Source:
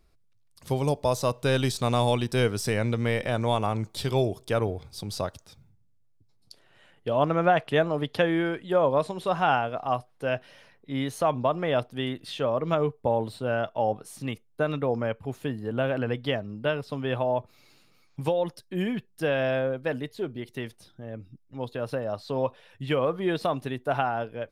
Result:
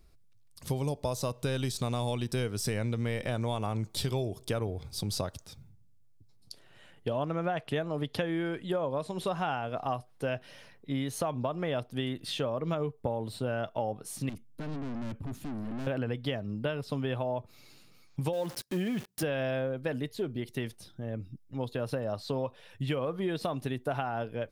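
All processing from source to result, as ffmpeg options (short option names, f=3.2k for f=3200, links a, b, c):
-filter_complex "[0:a]asettb=1/sr,asplit=3[a][b][c];[a]atrim=end=14.294[d];[b]atrim=start=14.29:end=15.87,asetpts=PTS-STARTPTS,afade=t=in:d=0.004:c=qsin,afade=t=out:st=1.576:d=0.004:c=qsin,lowshelf=f=340:t=q:w=3:g=7,acompressor=threshold=-25dB:ratio=3:attack=3.2:release=140:knee=1:detection=peak,aeval=exprs='(tanh(79.4*val(0)+0.4)-tanh(0.4))/79.4':c=same[e];[c]atrim=start=15.866[f];[d][e]acrossfade=d=0.004:c1=hsin:c2=qsin[g];[g][f]acrossfade=d=0.004:c1=qsin:c2=hsin,asettb=1/sr,asplit=3[h][i][j];[h]atrim=end=18.334[k];[i]atrim=start=18.33:end=19.23,asetpts=PTS-STARTPTS,afade=t=in:d=0.004:c=qsin,afade=t=out:st=0.896:d=0.004:c=qsin,aeval=exprs='val(0)+0.5*0.015*sgn(val(0))':c=same,highpass=f=140:p=1[l];[j]atrim=start=19.226[m];[k][l]acrossfade=d=0.004:c1=hsin:c2=qsin[n];[n][m]acrossfade=d=0.004:c1=qsin:c2=hsin,equalizer=f=1.1k:w=0.3:g=-5,acompressor=threshold=-33dB:ratio=6,volume=4.5dB"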